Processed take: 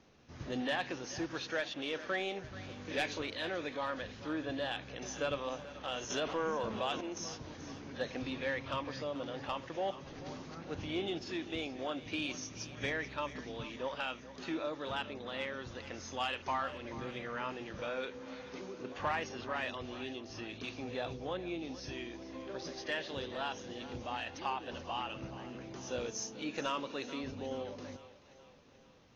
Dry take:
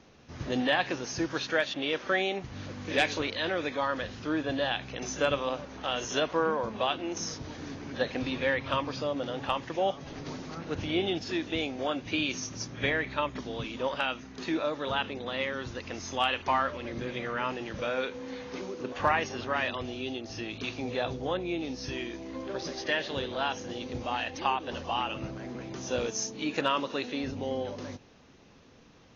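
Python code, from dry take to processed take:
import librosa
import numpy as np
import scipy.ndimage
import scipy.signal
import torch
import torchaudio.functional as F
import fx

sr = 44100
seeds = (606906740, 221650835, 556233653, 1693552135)

y = 10.0 ** (-17.5 / 20.0) * np.tanh(x / 10.0 ** (-17.5 / 20.0))
y = fx.echo_split(y, sr, split_hz=410.0, low_ms=104, high_ms=433, feedback_pct=52, wet_db=-15.0)
y = fx.env_flatten(y, sr, amount_pct=50, at=(6.1, 7.01))
y = F.gain(torch.from_numpy(y), -7.0).numpy()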